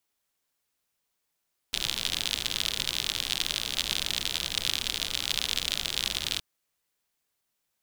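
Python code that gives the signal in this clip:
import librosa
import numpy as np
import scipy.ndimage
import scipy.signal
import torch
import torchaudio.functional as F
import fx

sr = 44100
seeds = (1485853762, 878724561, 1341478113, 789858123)

y = fx.rain(sr, seeds[0], length_s=4.67, drops_per_s=68.0, hz=3500.0, bed_db=-10.5)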